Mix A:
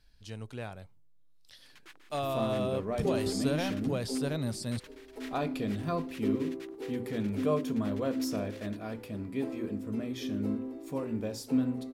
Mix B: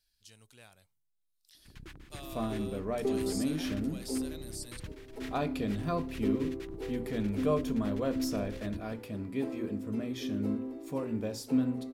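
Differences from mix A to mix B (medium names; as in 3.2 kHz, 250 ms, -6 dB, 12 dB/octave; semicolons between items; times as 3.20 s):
speech: add pre-emphasis filter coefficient 0.9; first sound: remove high-pass 580 Hz 12 dB/octave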